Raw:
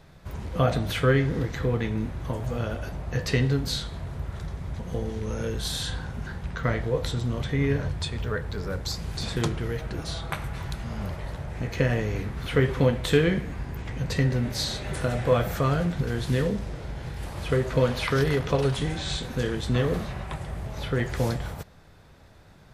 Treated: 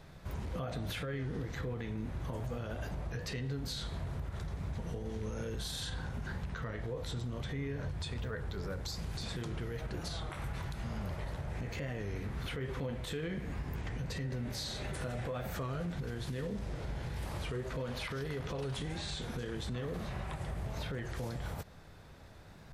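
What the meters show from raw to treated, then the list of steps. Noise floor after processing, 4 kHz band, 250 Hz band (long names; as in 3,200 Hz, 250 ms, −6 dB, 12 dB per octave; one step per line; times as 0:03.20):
−52 dBFS, −10.0 dB, −12.0 dB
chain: downward compressor 2 to 1, threshold −35 dBFS, peak gain reduction 11 dB
brickwall limiter −28.5 dBFS, peak gain reduction 11 dB
wow of a warped record 33 1/3 rpm, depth 100 cents
level −1.5 dB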